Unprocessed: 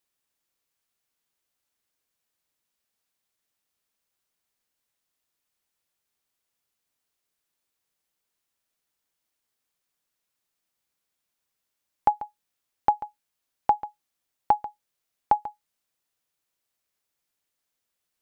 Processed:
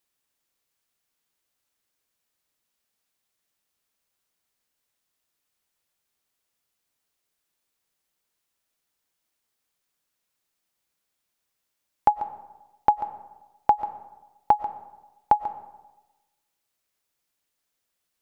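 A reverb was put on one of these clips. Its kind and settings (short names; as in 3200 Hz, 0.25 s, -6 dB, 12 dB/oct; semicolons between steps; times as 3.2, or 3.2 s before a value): digital reverb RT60 1.1 s, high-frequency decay 0.5×, pre-delay 80 ms, DRR 14 dB; gain +2 dB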